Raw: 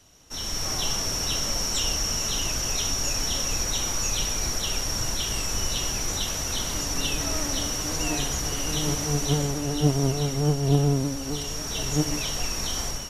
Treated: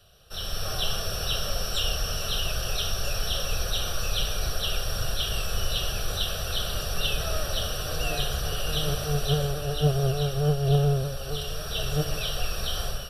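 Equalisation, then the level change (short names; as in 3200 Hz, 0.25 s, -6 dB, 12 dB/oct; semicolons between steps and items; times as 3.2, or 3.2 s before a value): fixed phaser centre 1400 Hz, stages 8; +3.0 dB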